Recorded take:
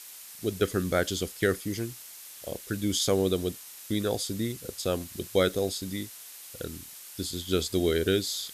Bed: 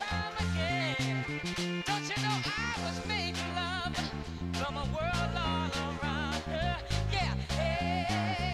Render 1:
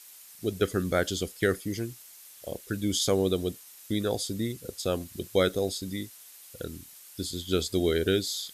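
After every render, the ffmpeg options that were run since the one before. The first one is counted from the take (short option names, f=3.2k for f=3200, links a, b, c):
-af "afftdn=nr=6:nf=-46"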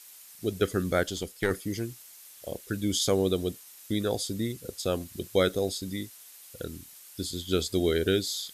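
-filter_complex "[0:a]asettb=1/sr,asplit=3[a][b][c];[a]atrim=end=1.034[d];[b]atrim=start=1.03:end=1.51,asetpts=PTS-STARTPTS,afade=t=in:d=0.004:c=qsin,afade=t=out:st=0.476:d=0.004:c=qsin,aeval=exprs='(tanh(5.01*val(0)+0.6)-tanh(0.6))/5.01':c=same[e];[c]atrim=start=1.506[f];[d][e]acrossfade=d=0.004:c1=hsin:c2=qsin[g];[g][f]acrossfade=d=0.004:c1=qsin:c2=hsin"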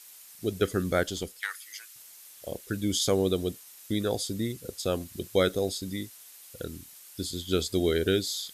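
-filter_complex "[0:a]asettb=1/sr,asplit=3[a][b][c];[a]atrim=end=1.404[d];[b]atrim=start=1.4:end=1.96,asetpts=PTS-STARTPTS,afade=t=in:d=0.004:c=qsin,afade=t=out:st=0.556:d=0.004:c=qsin,highpass=f=1.2k:w=0.5412,highpass=f=1.2k:w=1.3066[e];[c]atrim=start=1.956[f];[d][e]acrossfade=d=0.004:c1=hsin:c2=qsin[g];[g][f]acrossfade=d=0.004:c1=qsin:c2=hsin"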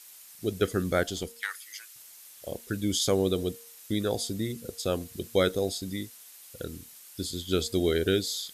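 -af "bandreject=f=232.6:t=h:w=4,bandreject=f=465.2:t=h:w=4,bandreject=f=697.8:t=h:w=4,bandreject=f=930.4:t=h:w=4"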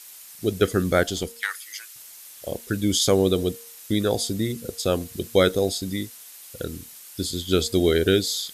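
-af "volume=6dB"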